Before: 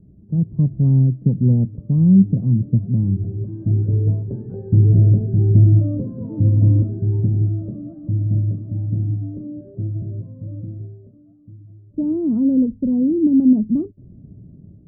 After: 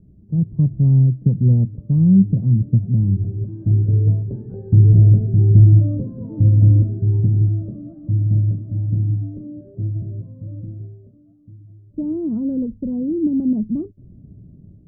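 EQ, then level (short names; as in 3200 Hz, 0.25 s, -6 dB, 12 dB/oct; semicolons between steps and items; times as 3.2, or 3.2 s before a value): low shelf 62 Hz +7 dB; dynamic EQ 260 Hz, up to -5 dB, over -29 dBFS, Q 6.9; dynamic EQ 110 Hz, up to +3 dB, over -22 dBFS, Q 0.92; -2.5 dB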